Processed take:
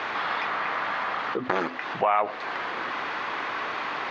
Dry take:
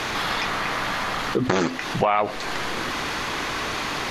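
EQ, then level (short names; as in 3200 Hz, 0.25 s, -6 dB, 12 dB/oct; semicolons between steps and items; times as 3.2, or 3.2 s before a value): band-pass 1200 Hz, Q 0.65; air absorption 140 m; 0.0 dB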